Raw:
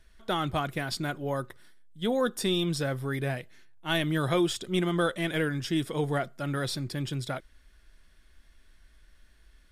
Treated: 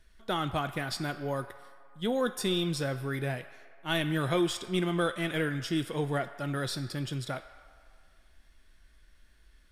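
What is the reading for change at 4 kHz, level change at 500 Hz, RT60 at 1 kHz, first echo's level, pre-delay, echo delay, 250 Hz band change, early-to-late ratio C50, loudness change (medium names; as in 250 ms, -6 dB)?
-1.5 dB, -2.0 dB, 2.1 s, no echo, 13 ms, no echo, -2.0 dB, 11.5 dB, -2.0 dB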